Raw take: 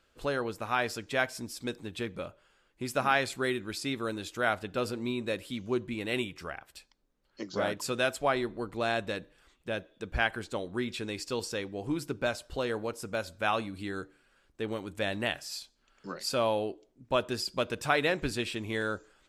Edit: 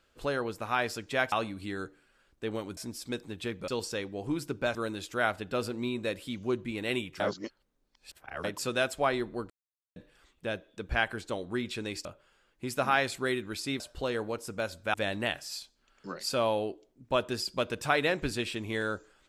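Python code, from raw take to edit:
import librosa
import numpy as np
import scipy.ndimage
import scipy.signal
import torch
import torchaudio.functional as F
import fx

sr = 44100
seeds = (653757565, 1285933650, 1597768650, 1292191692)

y = fx.edit(x, sr, fx.swap(start_s=2.23, length_s=1.75, other_s=11.28, other_length_s=1.07),
    fx.reverse_span(start_s=6.43, length_s=1.24),
    fx.silence(start_s=8.73, length_s=0.46),
    fx.move(start_s=13.49, length_s=1.45, to_s=1.32), tone=tone)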